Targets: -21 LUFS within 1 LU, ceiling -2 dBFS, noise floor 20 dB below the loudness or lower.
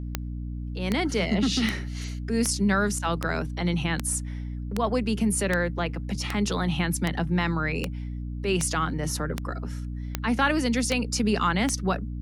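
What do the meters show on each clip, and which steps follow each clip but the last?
clicks 16; hum 60 Hz; harmonics up to 300 Hz; hum level -30 dBFS; loudness -27.0 LUFS; peak -7.0 dBFS; loudness target -21.0 LUFS
-> de-click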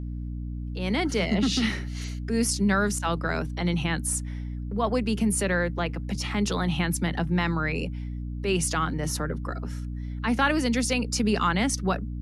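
clicks 0; hum 60 Hz; harmonics up to 300 Hz; hum level -30 dBFS
-> de-hum 60 Hz, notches 5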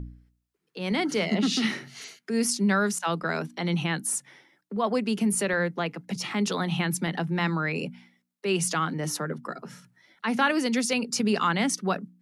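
hum none; loudness -27.0 LUFS; peak -11.0 dBFS; loudness target -21.0 LUFS
-> gain +6 dB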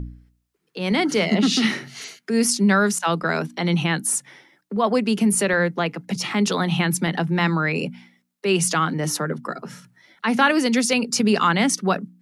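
loudness -21.0 LUFS; peak -5.0 dBFS; noise floor -71 dBFS

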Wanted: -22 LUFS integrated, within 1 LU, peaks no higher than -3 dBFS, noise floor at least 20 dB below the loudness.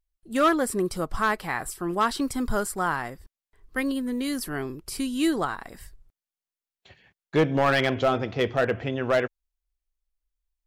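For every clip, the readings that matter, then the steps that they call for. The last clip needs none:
clipped 0.4%; flat tops at -14.5 dBFS; loudness -26.0 LUFS; peak -14.5 dBFS; loudness target -22.0 LUFS
-> clip repair -14.5 dBFS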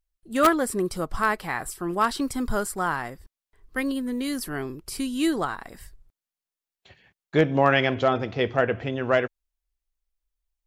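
clipped 0.0%; loudness -25.5 LUFS; peak -5.5 dBFS; loudness target -22.0 LUFS
-> gain +3.5 dB; limiter -3 dBFS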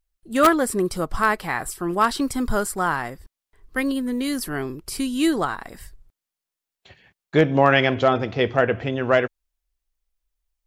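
loudness -22.0 LUFS; peak -3.0 dBFS; noise floor -87 dBFS

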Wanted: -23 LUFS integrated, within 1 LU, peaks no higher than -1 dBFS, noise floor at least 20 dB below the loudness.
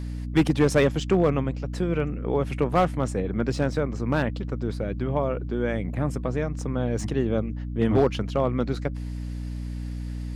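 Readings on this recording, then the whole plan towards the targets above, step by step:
clipped 0.4%; flat tops at -12.0 dBFS; hum 60 Hz; harmonics up to 300 Hz; hum level -29 dBFS; loudness -26.0 LUFS; peak -12.0 dBFS; loudness target -23.0 LUFS
-> clip repair -12 dBFS; notches 60/120/180/240/300 Hz; gain +3 dB

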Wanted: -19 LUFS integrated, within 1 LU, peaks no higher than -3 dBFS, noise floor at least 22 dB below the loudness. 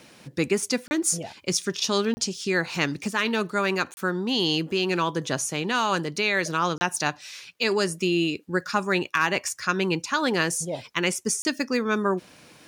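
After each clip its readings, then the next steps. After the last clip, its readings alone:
dropouts 5; longest dropout 30 ms; loudness -25.5 LUFS; peak -8.5 dBFS; loudness target -19.0 LUFS
-> interpolate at 0.88/2.14/3.94/6.78/11.42, 30 ms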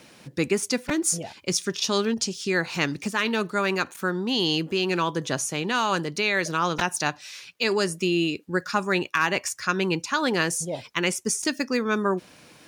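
dropouts 0; loudness -25.5 LUFS; peak -8.5 dBFS; loudness target -19.0 LUFS
-> gain +6.5 dB; limiter -3 dBFS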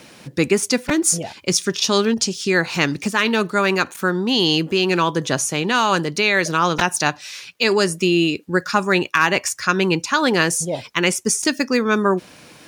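loudness -19.0 LUFS; peak -3.0 dBFS; noise floor -45 dBFS

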